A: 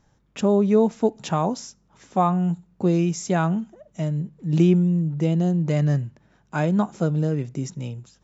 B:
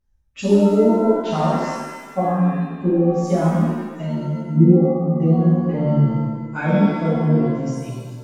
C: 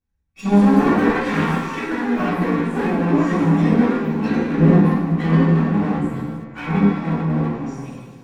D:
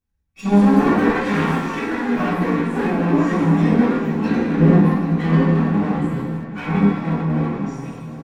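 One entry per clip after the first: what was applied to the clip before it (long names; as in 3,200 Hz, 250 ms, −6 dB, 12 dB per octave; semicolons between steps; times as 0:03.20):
spectral dynamics exaggerated over time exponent 1.5; treble cut that deepens with the level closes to 400 Hz, closed at −18 dBFS; reverb with rising layers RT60 1.3 s, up +7 semitones, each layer −8 dB, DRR −9.5 dB; level −2.5 dB
lower of the sound and its delayed copy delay 0.86 ms; delay with pitch and tempo change per echo 273 ms, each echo +5 semitones, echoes 3; convolution reverb RT60 0.30 s, pre-delay 3 ms, DRR −6 dB; level −10.5 dB
single-tap delay 778 ms −13.5 dB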